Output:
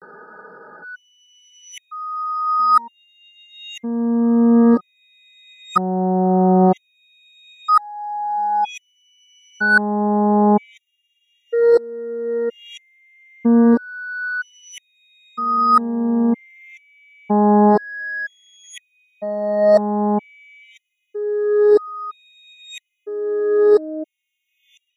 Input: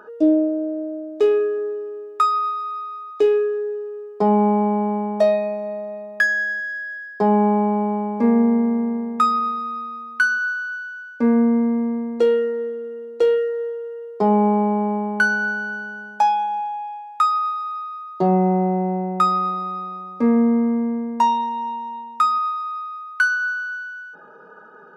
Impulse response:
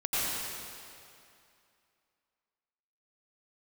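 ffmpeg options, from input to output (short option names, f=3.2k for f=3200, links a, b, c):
-af "areverse,afftfilt=real='re*gt(sin(2*PI*0.52*pts/sr)*(1-2*mod(floor(b*sr/1024/1900),2)),0)':imag='im*gt(sin(2*PI*0.52*pts/sr)*(1-2*mod(floor(b*sr/1024/1900),2)),0)':win_size=1024:overlap=0.75,volume=4dB"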